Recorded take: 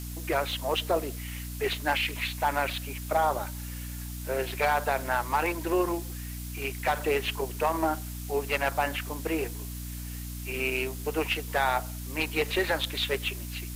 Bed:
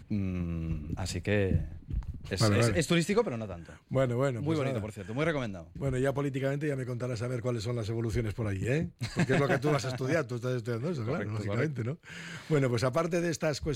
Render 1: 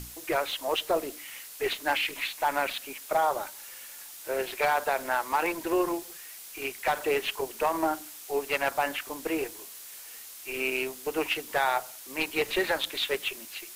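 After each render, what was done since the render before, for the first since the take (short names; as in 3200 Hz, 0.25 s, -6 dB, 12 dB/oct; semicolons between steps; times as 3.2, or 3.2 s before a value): notches 60/120/180/240/300 Hz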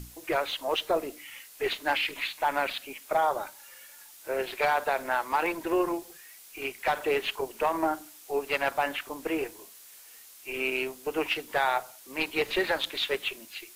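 noise print and reduce 6 dB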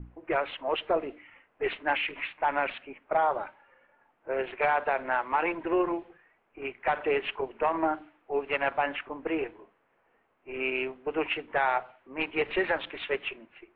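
low-pass opened by the level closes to 810 Hz, open at -22 dBFS; steep low-pass 2900 Hz 36 dB/oct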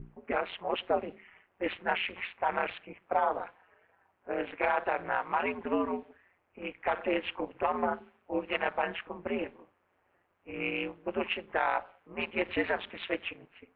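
wow and flutter 29 cents; ring modulator 89 Hz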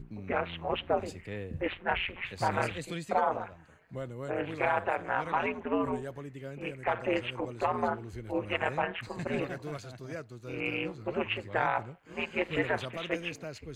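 add bed -11.5 dB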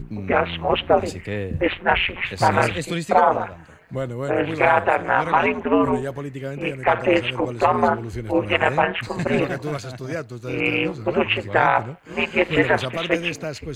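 gain +12 dB; limiter -3 dBFS, peak gain reduction 1 dB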